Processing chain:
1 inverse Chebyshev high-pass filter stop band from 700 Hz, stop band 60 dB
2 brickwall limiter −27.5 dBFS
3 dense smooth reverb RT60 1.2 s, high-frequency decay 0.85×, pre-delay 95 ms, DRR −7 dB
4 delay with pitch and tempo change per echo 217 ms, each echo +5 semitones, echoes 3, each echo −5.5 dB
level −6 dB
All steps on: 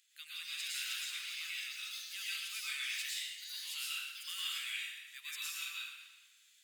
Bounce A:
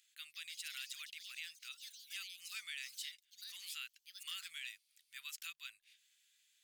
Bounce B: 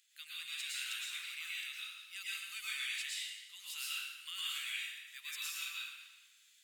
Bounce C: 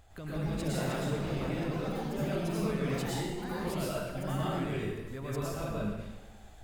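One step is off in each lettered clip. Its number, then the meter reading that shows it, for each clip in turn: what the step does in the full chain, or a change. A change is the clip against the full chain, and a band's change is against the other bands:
3, change in crest factor +3.0 dB
4, change in integrated loudness −1.0 LU
1, 1 kHz band +22.0 dB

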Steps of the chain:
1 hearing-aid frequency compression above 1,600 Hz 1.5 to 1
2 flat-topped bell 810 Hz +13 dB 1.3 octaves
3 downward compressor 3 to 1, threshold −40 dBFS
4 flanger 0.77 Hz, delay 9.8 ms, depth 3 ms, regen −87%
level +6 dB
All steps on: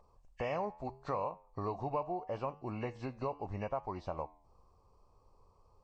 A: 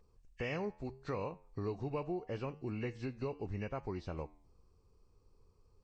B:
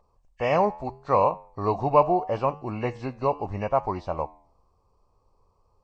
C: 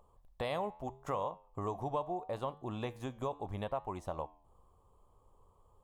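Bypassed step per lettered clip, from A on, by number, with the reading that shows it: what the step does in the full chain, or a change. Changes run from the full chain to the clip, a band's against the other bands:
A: 2, 1 kHz band −10.5 dB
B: 3, average gain reduction 11.0 dB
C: 1, 4 kHz band +7.0 dB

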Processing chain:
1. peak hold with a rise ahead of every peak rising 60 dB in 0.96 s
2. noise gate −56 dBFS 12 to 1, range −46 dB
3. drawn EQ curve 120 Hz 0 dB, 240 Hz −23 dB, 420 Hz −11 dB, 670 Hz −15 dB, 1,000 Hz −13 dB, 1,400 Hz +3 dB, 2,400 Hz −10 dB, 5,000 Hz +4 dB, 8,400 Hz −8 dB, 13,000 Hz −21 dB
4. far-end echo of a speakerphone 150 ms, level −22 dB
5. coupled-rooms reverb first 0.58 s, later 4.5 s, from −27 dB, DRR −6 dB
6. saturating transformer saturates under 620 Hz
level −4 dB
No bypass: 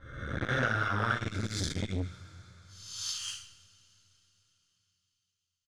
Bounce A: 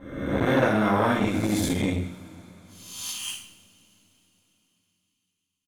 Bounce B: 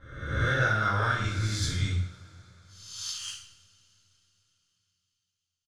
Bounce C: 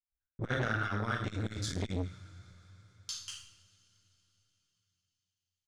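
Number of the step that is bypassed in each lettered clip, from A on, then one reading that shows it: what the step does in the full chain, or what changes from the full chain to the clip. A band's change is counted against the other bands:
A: 3, change in crest factor −2.0 dB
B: 6, change in crest factor −3.5 dB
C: 1, 250 Hz band +3.5 dB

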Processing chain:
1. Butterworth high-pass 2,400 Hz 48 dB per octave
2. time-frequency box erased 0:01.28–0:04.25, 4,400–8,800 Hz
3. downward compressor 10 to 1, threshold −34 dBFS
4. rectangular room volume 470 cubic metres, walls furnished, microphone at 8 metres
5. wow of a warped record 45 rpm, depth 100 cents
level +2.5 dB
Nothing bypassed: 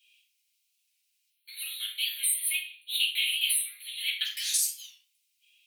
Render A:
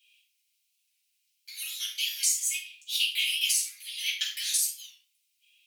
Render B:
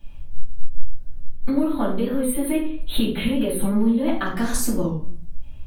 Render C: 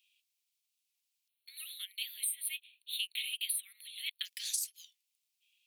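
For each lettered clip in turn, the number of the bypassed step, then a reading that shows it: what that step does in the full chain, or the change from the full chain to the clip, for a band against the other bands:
2, change in crest factor +2.0 dB
1, change in crest factor −6.5 dB
4, change in crest factor +4.0 dB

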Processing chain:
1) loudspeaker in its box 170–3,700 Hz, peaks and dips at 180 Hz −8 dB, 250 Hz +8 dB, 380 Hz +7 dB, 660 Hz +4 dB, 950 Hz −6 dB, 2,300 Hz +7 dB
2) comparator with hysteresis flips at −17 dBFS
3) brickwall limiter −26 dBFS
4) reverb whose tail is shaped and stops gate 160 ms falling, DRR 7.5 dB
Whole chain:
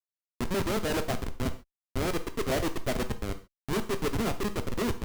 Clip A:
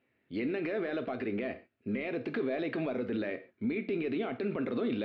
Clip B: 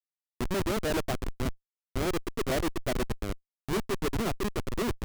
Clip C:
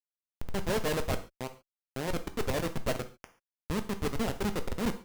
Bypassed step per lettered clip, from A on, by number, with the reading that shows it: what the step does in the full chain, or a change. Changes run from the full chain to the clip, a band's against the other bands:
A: 2, 4 kHz band −9.0 dB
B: 4, change in momentary loudness spread −1 LU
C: 1, change in integrated loudness −2.0 LU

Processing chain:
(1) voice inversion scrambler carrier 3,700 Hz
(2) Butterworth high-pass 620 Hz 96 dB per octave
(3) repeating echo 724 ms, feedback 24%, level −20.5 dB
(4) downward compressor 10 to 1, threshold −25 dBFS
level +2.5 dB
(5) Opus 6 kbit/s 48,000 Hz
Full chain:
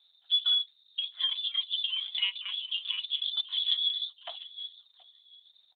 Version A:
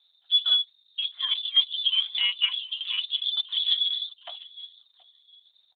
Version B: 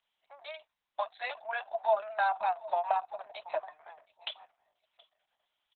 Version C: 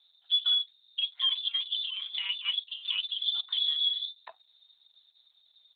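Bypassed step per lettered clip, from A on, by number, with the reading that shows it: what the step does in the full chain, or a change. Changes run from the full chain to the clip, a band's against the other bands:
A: 4, average gain reduction 3.0 dB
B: 1, change in crest factor +3.0 dB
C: 3, change in momentary loudness spread −7 LU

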